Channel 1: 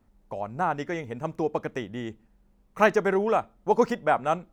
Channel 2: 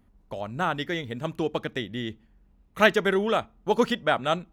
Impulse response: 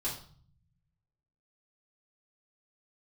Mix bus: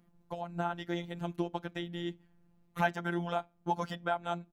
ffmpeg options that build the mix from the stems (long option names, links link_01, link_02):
-filter_complex "[0:a]aecho=1:1:1.3:0.85,tremolo=f=76:d=0.947,volume=-8dB,asplit=2[link_01][link_02];[1:a]lowshelf=frequency=450:gain=4.5,volume=-1,adelay=1.3,volume=-1dB[link_03];[link_02]apad=whole_len=199694[link_04];[link_03][link_04]sidechaincompress=threshold=-43dB:ratio=3:attack=23:release=390[link_05];[link_01][link_05]amix=inputs=2:normalize=0,highpass=54,afftfilt=real='hypot(re,im)*cos(PI*b)':imag='0':win_size=1024:overlap=0.75"